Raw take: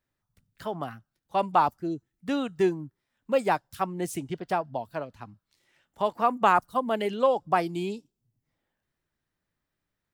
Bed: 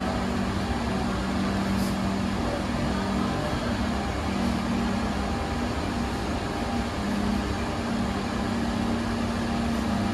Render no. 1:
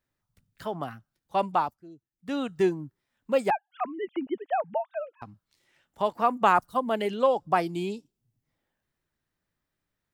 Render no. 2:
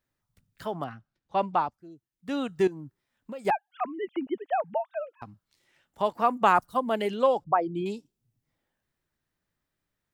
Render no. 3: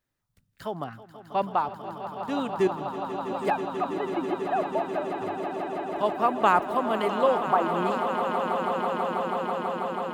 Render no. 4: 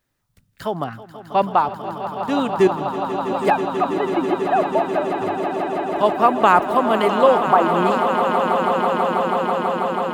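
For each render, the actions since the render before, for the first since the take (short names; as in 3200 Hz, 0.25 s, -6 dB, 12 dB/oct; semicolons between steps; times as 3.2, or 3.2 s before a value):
1.46–2.44 dip -16.5 dB, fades 0.32 s; 3.5–5.22 sine-wave speech
0.84–1.74 air absorption 110 m; 2.67–3.45 compressor, threshold -36 dBFS; 7.44–7.86 formant sharpening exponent 2
swelling echo 0.163 s, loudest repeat 8, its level -11.5 dB
gain +8.5 dB; limiter -2 dBFS, peak gain reduction 3 dB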